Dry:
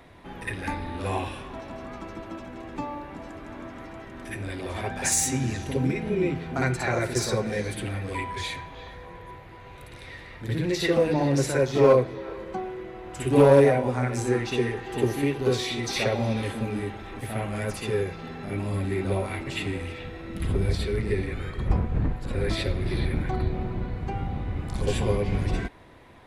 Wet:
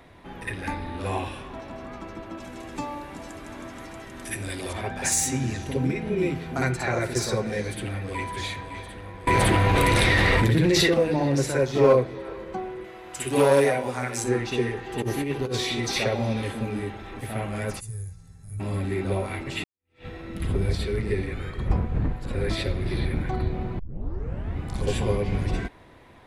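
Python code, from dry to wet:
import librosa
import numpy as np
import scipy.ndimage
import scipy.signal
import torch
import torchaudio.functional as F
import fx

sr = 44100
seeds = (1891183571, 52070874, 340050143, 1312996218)

y = fx.peak_eq(x, sr, hz=9400.0, db=14.0, octaves=2.0, at=(2.4, 4.73))
y = fx.high_shelf(y, sr, hz=fx.line((6.17, 4900.0), (6.69, 8700.0)), db=10.5, at=(6.17, 6.69), fade=0.02)
y = fx.echo_throw(y, sr, start_s=7.62, length_s=0.64, ms=560, feedback_pct=70, wet_db=-8.5)
y = fx.env_flatten(y, sr, amount_pct=100, at=(9.27, 10.94))
y = fx.tilt_eq(y, sr, slope=2.5, at=(12.84, 14.24))
y = fx.over_compress(y, sr, threshold_db=-25.0, ratio=-0.5, at=(14.98, 15.98), fade=0.02)
y = fx.curve_eq(y, sr, hz=(110.0, 270.0, 740.0, 1600.0, 3100.0, 6900.0, 10000.0, 15000.0), db=(0, -28, -27, -23, -28, 2, 9, -18), at=(17.79, 18.59), fade=0.02)
y = fx.edit(y, sr, fx.fade_in_span(start_s=19.64, length_s=0.42, curve='exp'),
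    fx.tape_start(start_s=23.79, length_s=0.78), tone=tone)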